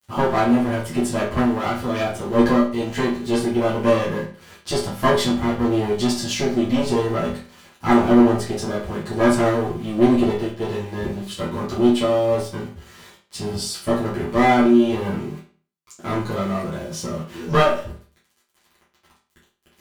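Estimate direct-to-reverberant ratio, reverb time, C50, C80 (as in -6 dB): -10.0 dB, 0.40 s, 5.5 dB, 10.5 dB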